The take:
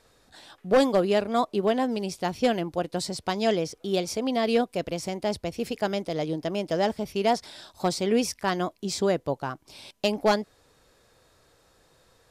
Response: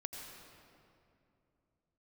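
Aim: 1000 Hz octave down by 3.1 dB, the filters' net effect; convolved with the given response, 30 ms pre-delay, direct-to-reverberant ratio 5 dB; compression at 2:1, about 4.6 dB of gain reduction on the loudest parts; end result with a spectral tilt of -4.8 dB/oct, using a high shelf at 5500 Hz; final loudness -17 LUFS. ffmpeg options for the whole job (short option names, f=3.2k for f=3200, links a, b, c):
-filter_complex "[0:a]equalizer=f=1k:t=o:g=-4.5,highshelf=f=5.5k:g=-8.5,acompressor=threshold=-26dB:ratio=2,asplit=2[a][b];[1:a]atrim=start_sample=2205,adelay=30[c];[b][c]afir=irnorm=-1:irlink=0,volume=-3.5dB[d];[a][d]amix=inputs=2:normalize=0,volume=12.5dB"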